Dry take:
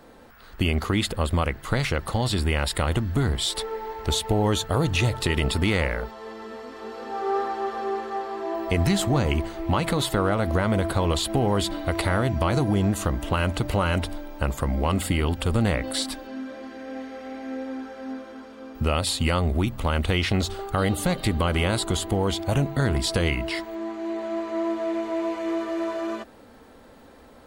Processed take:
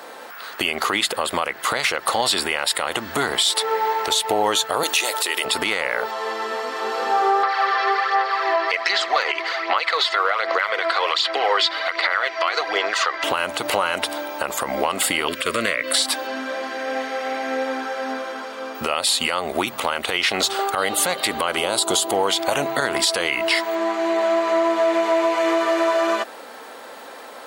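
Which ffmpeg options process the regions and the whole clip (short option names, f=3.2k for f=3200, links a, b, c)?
-filter_complex "[0:a]asettb=1/sr,asplit=3[a][b][c];[a]atrim=end=4.834[d];[b]atrim=start=4.83:end=5.45,asetpts=PTS-STARTPTS,afade=t=in:d=0.004:c=qsin,afade=t=out:st=0.616:d=0.004:c=qsin,highpass=f=300:w=0.5412,highpass=f=300:w=1.3066,aemphasis=mode=production:type=50kf[e];[c]atrim=start=5.446[f];[d][e]acrossfade=d=0.004:c1=hsin:c2=qsin[g];[g][f]acrossfade=d=0.004:c1=qsin:c2=hsin,asettb=1/sr,asplit=3[h][i][j];[h]atrim=end=7.434[k];[i]atrim=start=7.43:end=13.24,asetpts=PTS-STARTPTS,afade=t=in:d=0.004:c=qsin,afade=t=out:st=5.806:d=0.004:c=qsin,highpass=f=490:w=0.5412,highpass=f=490:w=1.3066,equalizer=f=620:t=q:w=4:g=-6,equalizer=f=880:t=q:w=4:g=-7,equalizer=f=1.3k:t=q:w=4:g=3,equalizer=f=2k:t=q:w=4:g=7,equalizer=f=4.8k:t=q:w=4:g=6,lowpass=f=5.2k:w=0.5412,lowpass=f=5.2k:w=1.3066,aphaser=in_gain=1:out_gain=1:delay=3:decay=0.48:speed=1.3:type=sinusoidal[l];[j]atrim=start=13.236[m];[k][l]acrossfade=d=0.004:c1=hsin:c2=qsin[n];[n][m]acrossfade=d=0.004:c1=qsin:c2=hsin,asettb=1/sr,asplit=3[o][p][q];[o]atrim=end=15.284[r];[p]atrim=start=15.28:end=15.93,asetpts=PTS-STARTPTS,afade=t=in:d=0.004:c=qsin,afade=t=out:st=0.646:d=0.004:c=qsin,asuperstop=centerf=820:order=8:qfactor=2.6,equalizer=f=2.2k:w=2.2:g=7[s];[q]atrim=start=15.926[t];[r][s]acrossfade=d=0.004:c1=hsin:c2=qsin[u];[u][t]acrossfade=d=0.004:c1=qsin:c2=hsin,asettb=1/sr,asplit=3[v][w][x];[v]atrim=end=21.574[y];[w]atrim=start=21.57:end=22.12,asetpts=PTS-STARTPTS,afade=t=in:d=0.004:c=qsin,afade=t=out:st=0.546:d=0.004:c=qsin,equalizer=f=1.9k:t=o:w=1.1:g=-10.5,acontrast=30,bandreject=f=1.1k:w=20[z];[x]atrim=start=22.116[aa];[y][z]acrossfade=d=0.004:c1=hsin:c2=qsin[ab];[ab][aa]acrossfade=d=0.004:c1=qsin:c2=hsin,highpass=620,acompressor=threshold=-31dB:ratio=6,alimiter=level_in=23dB:limit=-1dB:release=50:level=0:latency=1,volume=-7dB"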